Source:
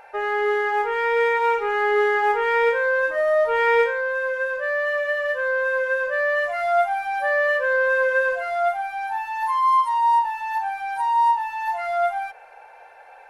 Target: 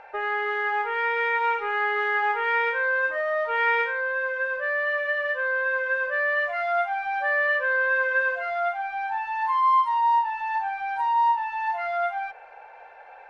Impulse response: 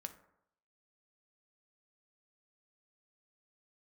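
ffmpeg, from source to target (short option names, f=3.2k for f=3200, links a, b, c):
-filter_complex "[0:a]lowpass=3.6k,acrossover=split=870[a][b];[a]acompressor=threshold=-33dB:ratio=6[c];[c][b]amix=inputs=2:normalize=0"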